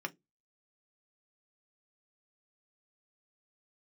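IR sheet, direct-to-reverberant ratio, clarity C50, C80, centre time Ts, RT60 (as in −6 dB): 4.0 dB, 27.0 dB, 36.5 dB, 3 ms, 0.15 s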